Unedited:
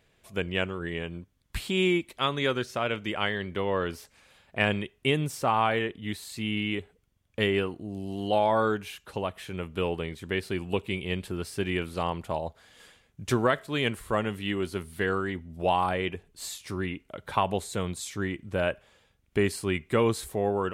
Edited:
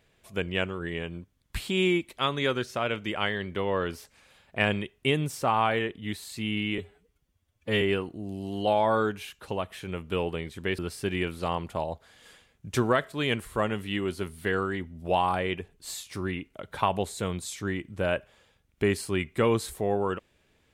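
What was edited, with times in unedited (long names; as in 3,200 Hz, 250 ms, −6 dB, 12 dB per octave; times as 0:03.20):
0:06.78–0:07.47: time-stretch 1.5×
0:10.44–0:11.33: remove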